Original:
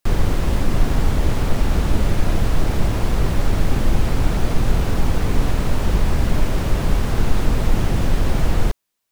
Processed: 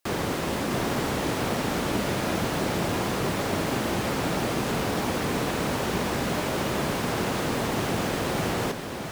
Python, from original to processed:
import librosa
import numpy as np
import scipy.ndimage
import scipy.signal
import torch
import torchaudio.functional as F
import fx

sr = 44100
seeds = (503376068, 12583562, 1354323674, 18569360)

y = scipy.signal.sosfilt(scipy.signal.bessel(2, 250.0, 'highpass', norm='mag', fs=sr, output='sos'), x)
y = y + 10.0 ** (-6.0 / 20.0) * np.pad(y, (int(657 * sr / 1000.0), 0))[:len(y)]